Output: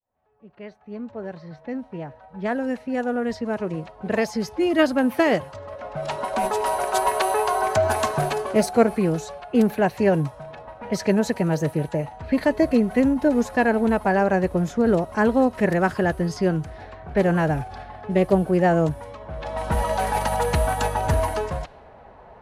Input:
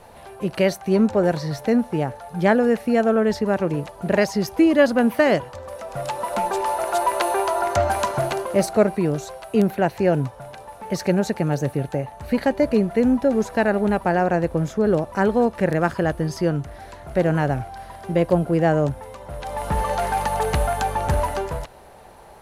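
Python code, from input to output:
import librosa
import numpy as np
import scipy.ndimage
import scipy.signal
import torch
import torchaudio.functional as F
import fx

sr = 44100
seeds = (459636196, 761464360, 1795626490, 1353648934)

y = fx.fade_in_head(x, sr, length_s=6.45)
y = fx.pitch_keep_formants(y, sr, semitones=1.5)
y = fx.env_lowpass(y, sr, base_hz=1800.0, full_db=-19.5)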